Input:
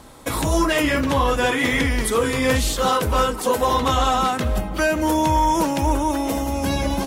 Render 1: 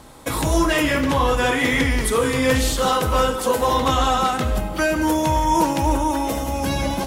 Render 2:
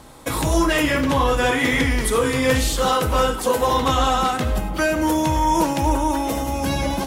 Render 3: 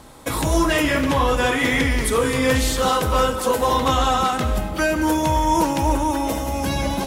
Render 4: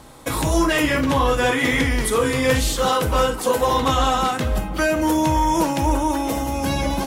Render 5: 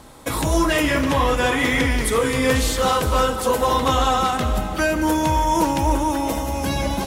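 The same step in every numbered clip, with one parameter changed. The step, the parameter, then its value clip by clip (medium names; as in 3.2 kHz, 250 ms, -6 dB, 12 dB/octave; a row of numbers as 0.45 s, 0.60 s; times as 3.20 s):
gated-style reverb, gate: 200 ms, 130 ms, 310 ms, 80 ms, 530 ms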